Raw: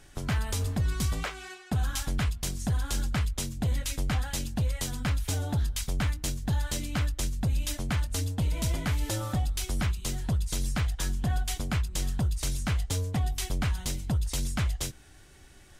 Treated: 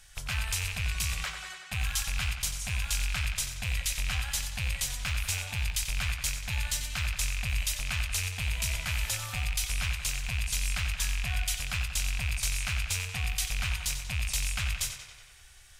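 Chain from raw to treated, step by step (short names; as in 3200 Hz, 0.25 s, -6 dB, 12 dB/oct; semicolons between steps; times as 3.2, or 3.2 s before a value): rattling part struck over -28 dBFS, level -23 dBFS; passive tone stack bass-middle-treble 10-0-10; tape echo 92 ms, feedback 71%, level -6.5 dB, low-pass 5600 Hz; gain +4 dB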